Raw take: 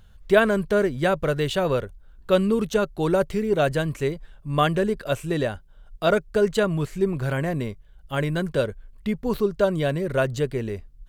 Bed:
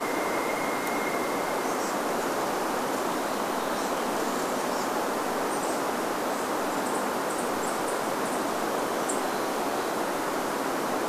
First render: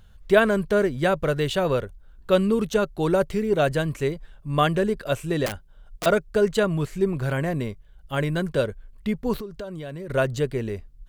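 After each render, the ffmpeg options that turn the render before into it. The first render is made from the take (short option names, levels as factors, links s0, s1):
-filter_complex "[0:a]asettb=1/sr,asplit=3[s0][s1][s2];[s0]atrim=end=5.464[s3];[s1]atrim=start=5.46:end=6.06,asetpts=PTS-STARTPTS,afade=t=in:d=0.004:c=qsin,afade=t=out:st=0.596:d=0.004:c=qsin,aeval=exprs='(mod(14.1*val(0)+1,2)-1)/14.1':c=same[s4];[s2]atrim=start=6.056[s5];[s3][s4]acrossfade=d=0.004:c1=hsin:c2=qsin[s6];[s6][s5]acrossfade=d=0.004:c1=qsin:c2=hsin,asettb=1/sr,asplit=3[s7][s8][s9];[s7]atrim=end=9.404[s10];[s8]atrim=start=9.4:end=10.1,asetpts=PTS-STARTPTS,afade=t=in:d=0.004:c=qsin,afade=t=out:st=0.696:d=0.004:c=qsin,acompressor=threshold=0.0282:ratio=8:attack=3.2:release=140:knee=1:detection=peak[s11];[s9]atrim=start=10.096[s12];[s10][s11]acrossfade=d=0.004:c1=hsin:c2=qsin[s13];[s13][s12]acrossfade=d=0.004:c1=qsin:c2=hsin"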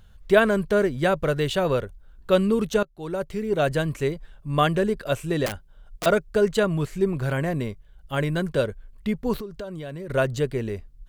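-filter_complex "[0:a]asplit=2[s0][s1];[s0]atrim=end=2.83,asetpts=PTS-STARTPTS,afade=t=out:st=2.826:d=0.004:c=hsin:silence=0.0794328[s2];[s1]atrim=start=2.83,asetpts=PTS-STARTPTS,afade=t=in:d=0.92:silence=0.0794328[s3];[s2][s3]concat=n=2:v=0:a=1"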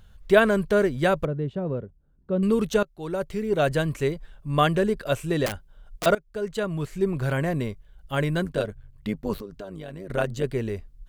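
-filter_complex "[0:a]asettb=1/sr,asplit=3[s0][s1][s2];[s0]atrim=end=1.254[s3];[s1]atrim=start=1.25:end=2.43,asetpts=PTS-STARTPTS,afade=t=in:d=0.004:c=qsin,afade=t=out:st=1.176:d=0.004:c=qsin,bandpass=f=190:t=q:w=1[s4];[s2]atrim=start=2.426[s5];[s3][s4]acrossfade=d=0.004:c1=hsin:c2=qsin[s6];[s6][s5]acrossfade=d=0.004:c1=qsin:c2=hsin,asplit=3[s7][s8][s9];[s7]afade=t=out:st=8.43:d=0.02[s10];[s8]tremolo=f=100:d=0.75,afade=t=in:st=8.43:d=0.02,afade=t=out:st=10.43:d=0.02[s11];[s9]afade=t=in:st=10.43:d=0.02[s12];[s10][s11][s12]amix=inputs=3:normalize=0,asplit=2[s13][s14];[s13]atrim=end=6.15,asetpts=PTS-STARTPTS,afade=t=out:st=6.146:d=0.004:c=hsin:silence=0.11885[s15];[s14]atrim=start=6.15,asetpts=PTS-STARTPTS,afade=t=in:d=1.09:silence=0.11885[s16];[s15][s16]concat=n=2:v=0:a=1"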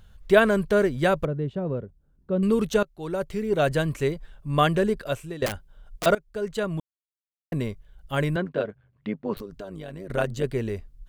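-filter_complex "[0:a]asettb=1/sr,asplit=3[s0][s1][s2];[s0]atrim=end=8.364[s3];[s1]atrim=start=8.36:end=9.37,asetpts=PTS-STARTPTS,afade=t=in:d=0.004:c=qsin,afade=t=out:st=1.006:d=0.004:c=qsin,highpass=170,lowpass=2600[s4];[s2]atrim=start=9.366[s5];[s3][s4]acrossfade=d=0.004:c1=hsin:c2=qsin[s6];[s6][s5]acrossfade=d=0.004:c1=qsin:c2=hsin,asplit=4[s7][s8][s9][s10];[s7]atrim=end=5.42,asetpts=PTS-STARTPTS,afade=t=out:st=4.94:d=0.48:silence=0.149624[s11];[s8]atrim=start=5.42:end=6.8,asetpts=PTS-STARTPTS,afade=t=in:d=0.004:c=hsin:silence=0.149624,afade=t=out:st=1.376:d=0.004:c=hsin[s12];[s9]atrim=start=6.8:end=7.52,asetpts=PTS-STARTPTS,volume=0[s13];[s10]atrim=start=7.52,asetpts=PTS-STARTPTS,afade=t=in:d=0.004:c=hsin[s14];[s11][s12][s13][s14]concat=n=4:v=0:a=1"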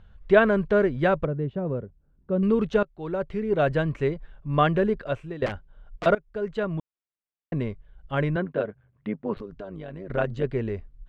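-af "lowpass=2500"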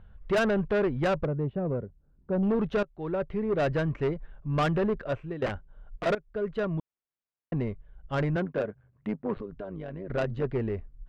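-af "adynamicsmooth=sensitivity=3:basefreq=3000,asoftclip=type=tanh:threshold=0.0891"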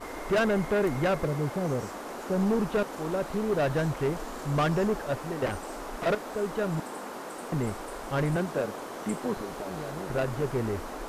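-filter_complex "[1:a]volume=0.299[s0];[0:a][s0]amix=inputs=2:normalize=0"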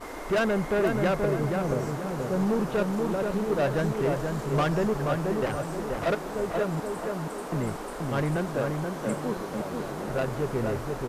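-filter_complex "[0:a]asplit=2[s0][s1];[s1]adelay=480,lowpass=f=1800:p=1,volume=0.668,asplit=2[s2][s3];[s3]adelay=480,lowpass=f=1800:p=1,volume=0.46,asplit=2[s4][s5];[s5]adelay=480,lowpass=f=1800:p=1,volume=0.46,asplit=2[s6][s7];[s7]adelay=480,lowpass=f=1800:p=1,volume=0.46,asplit=2[s8][s9];[s9]adelay=480,lowpass=f=1800:p=1,volume=0.46,asplit=2[s10][s11];[s11]adelay=480,lowpass=f=1800:p=1,volume=0.46[s12];[s0][s2][s4][s6][s8][s10][s12]amix=inputs=7:normalize=0"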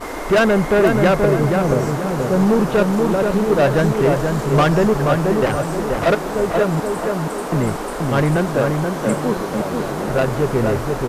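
-af "volume=3.35"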